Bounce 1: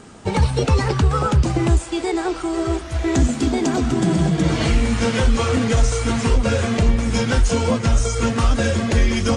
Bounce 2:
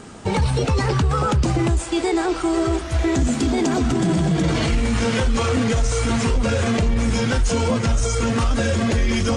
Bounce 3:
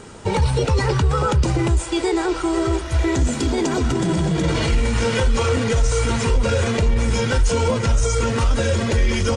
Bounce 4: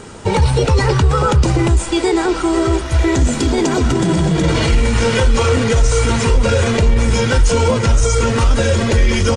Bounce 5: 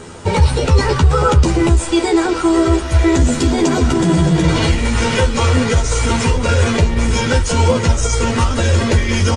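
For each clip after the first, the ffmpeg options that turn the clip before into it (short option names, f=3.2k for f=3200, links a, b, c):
-af "alimiter=limit=-15dB:level=0:latency=1:release=19,volume=3dB"
-af "aecho=1:1:2.1:0.36"
-filter_complex "[0:a]asplit=6[a][b][c][d][e][f];[b]adelay=107,afreqshift=-65,volume=-21.5dB[g];[c]adelay=214,afreqshift=-130,volume=-25.5dB[h];[d]adelay=321,afreqshift=-195,volume=-29.5dB[i];[e]adelay=428,afreqshift=-260,volume=-33.5dB[j];[f]adelay=535,afreqshift=-325,volume=-37.6dB[k];[a][g][h][i][j][k]amix=inputs=6:normalize=0,volume=5dB"
-filter_complex "[0:a]asplit=2[a][b];[b]adelay=12,volume=-4dB[c];[a][c]amix=inputs=2:normalize=0,volume=-1dB"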